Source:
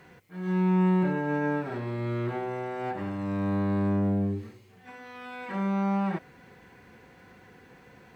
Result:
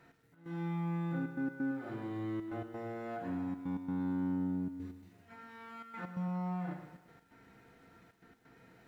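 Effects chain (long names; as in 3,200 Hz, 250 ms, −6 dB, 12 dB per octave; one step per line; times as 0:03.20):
tuned comb filter 300 Hz, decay 0.24 s, harmonics odd, mix 70%
convolution reverb RT60 0.55 s, pre-delay 4 ms, DRR 3.5 dB
downward compressor 2.5 to 1, threshold −35 dBFS, peak gain reduction 6.5 dB
gate pattern "x.x.xxxxxx" 143 BPM −12 dB
wrong playback speed 48 kHz file played as 44.1 kHz
feedback echo at a low word length 113 ms, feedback 55%, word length 11 bits, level −11 dB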